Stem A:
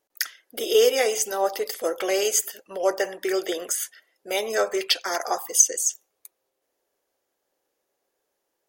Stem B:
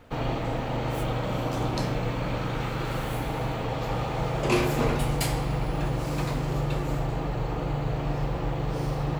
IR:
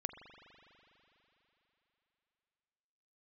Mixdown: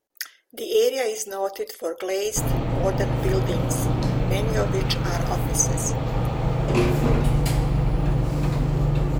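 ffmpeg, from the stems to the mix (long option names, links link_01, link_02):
-filter_complex "[0:a]volume=-5dB[link_01];[1:a]adelay=2250,volume=-1.5dB[link_02];[link_01][link_02]amix=inputs=2:normalize=0,lowshelf=frequency=340:gain=9.5"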